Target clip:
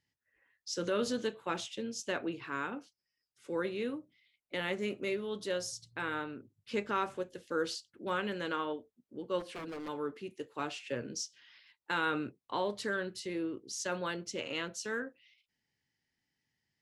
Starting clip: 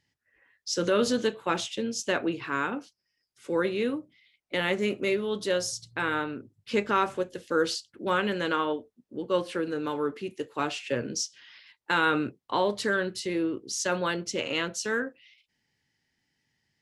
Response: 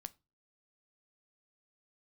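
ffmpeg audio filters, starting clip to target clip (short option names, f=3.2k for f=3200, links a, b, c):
-filter_complex "[0:a]asplit=3[a][b][c];[a]afade=t=out:st=9.39:d=0.02[d];[b]aeval=exprs='0.0376*(abs(mod(val(0)/0.0376+3,4)-2)-1)':c=same,afade=t=in:st=9.39:d=0.02,afade=t=out:st=9.87:d=0.02[e];[c]afade=t=in:st=9.87:d=0.02[f];[d][e][f]amix=inputs=3:normalize=0,volume=-8dB"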